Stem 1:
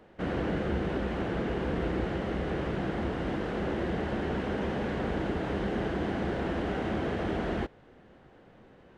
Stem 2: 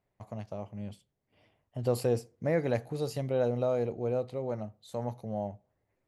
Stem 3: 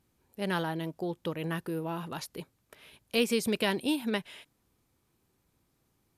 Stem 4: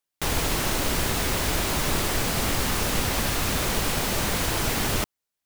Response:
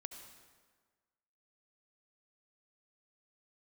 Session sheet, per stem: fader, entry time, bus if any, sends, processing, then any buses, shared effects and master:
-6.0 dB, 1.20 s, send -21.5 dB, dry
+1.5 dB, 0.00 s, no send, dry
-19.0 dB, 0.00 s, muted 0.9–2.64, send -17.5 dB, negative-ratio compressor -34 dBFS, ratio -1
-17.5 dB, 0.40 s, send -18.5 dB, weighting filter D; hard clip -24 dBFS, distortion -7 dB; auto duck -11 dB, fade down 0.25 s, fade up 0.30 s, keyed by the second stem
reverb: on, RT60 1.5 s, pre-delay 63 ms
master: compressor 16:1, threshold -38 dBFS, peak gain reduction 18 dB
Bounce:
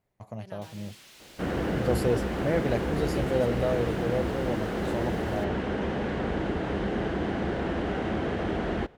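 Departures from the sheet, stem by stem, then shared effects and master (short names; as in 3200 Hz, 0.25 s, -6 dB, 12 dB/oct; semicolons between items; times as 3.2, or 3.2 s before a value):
stem 1 -6.0 dB -> +1.5 dB; stem 3: missing negative-ratio compressor -34 dBFS, ratio -1; master: missing compressor 16:1, threshold -38 dBFS, peak gain reduction 18 dB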